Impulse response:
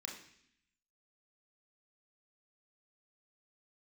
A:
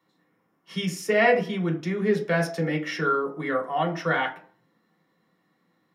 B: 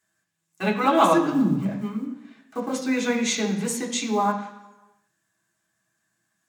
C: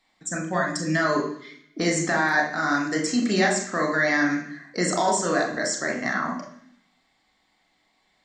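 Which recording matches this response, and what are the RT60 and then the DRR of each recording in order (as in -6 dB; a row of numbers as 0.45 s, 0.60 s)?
C; 0.50 s, 1.1 s, 0.65 s; -2.0 dB, -4.0 dB, -0.5 dB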